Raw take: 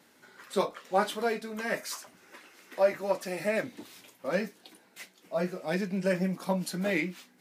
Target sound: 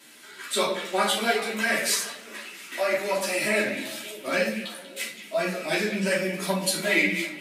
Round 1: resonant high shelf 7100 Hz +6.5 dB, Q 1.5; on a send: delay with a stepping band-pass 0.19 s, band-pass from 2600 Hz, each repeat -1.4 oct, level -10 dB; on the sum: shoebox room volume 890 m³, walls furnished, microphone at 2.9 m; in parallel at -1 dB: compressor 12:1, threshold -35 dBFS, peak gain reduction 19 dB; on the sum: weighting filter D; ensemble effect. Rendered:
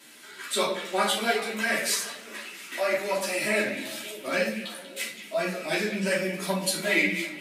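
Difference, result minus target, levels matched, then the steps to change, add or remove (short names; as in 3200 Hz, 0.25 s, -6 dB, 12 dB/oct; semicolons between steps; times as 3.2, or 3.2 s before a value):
compressor: peak gain reduction +6.5 dB
change: compressor 12:1, threshold -28 dBFS, peak gain reduction 12.5 dB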